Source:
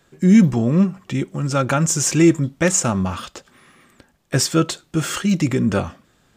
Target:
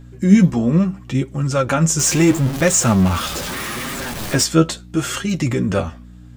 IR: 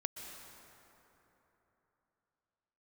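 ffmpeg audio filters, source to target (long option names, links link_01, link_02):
-filter_complex "[0:a]asettb=1/sr,asplit=3[link_01][link_02][link_03];[link_01]atrim=end=1.994[link_04];[link_02]atrim=start=1.99:end=4.44,asetpts=PTS-STARTPTS,afade=type=in:duration=0.004:curve=qsin,afade=type=out:start_time=2.446:duration=0.004:curve=qsin,aeval=exprs='val(0)+0.5*0.0841*sgn(val(0))':channel_layout=same[link_05];[link_03]atrim=start=4.436[link_06];[link_04][link_05]acrossfade=duration=0.004:curve1=hsin:curve2=qsin[link_07];[link_07][link_06]acrossfade=duration=0.004:curve1=qsin:curve2=hsin,aeval=exprs='val(0)+0.0141*(sin(2*PI*60*n/s)+sin(2*PI*2*60*n/s)/2+sin(2*PI*3*60*n/s)/3+sin(2*PI*4*60*n/s)/4+sin(2*PI*5*60*n/s)/5)':channel_layout=same,flanger=delay=7.3:depth=5.2:regen=35:speed=0.76:shape=sinusoidal,volume=4.5dB"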